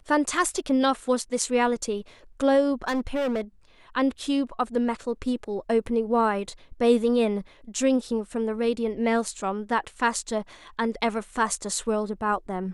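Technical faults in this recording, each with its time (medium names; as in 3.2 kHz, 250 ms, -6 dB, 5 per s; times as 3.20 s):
2.87–3.41 s: clipped -22.5 dBFS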